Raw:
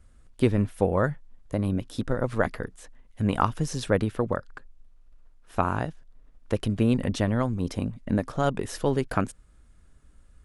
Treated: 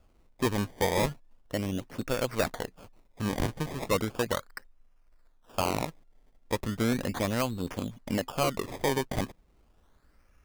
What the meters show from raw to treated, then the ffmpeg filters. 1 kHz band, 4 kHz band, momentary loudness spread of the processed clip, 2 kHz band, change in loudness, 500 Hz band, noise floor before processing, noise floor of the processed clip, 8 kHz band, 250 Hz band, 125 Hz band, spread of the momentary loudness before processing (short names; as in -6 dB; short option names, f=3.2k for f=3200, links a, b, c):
-3.0 dB, +4.0 dB, 9 LU, -0.5 dB, -4.0 dB, -3.0 dB, -55 dBFS, -64 dBFS, +3.5 dB, -5.0 dB, -7.0 dB, 8 LU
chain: -filter_complex "[0:a]asplit=2[a][b];[b]highpass=f=720:p=1,volume=10dB,asoftclip=type=tanh:threshold=-7dB[c];[a][c]amix=inputs=2:normalize=0,lowpass=f=3.9k:p=1,volume=-6dB,acrusher=samples=22:mix=1:aa=0.000001:lfo=1:lforange=22:lforate=0.36,aeval=exprs='0.178*(abs(mod(val(0)/0.178+3,4)-2)-1)':c=same,volume=-3dB"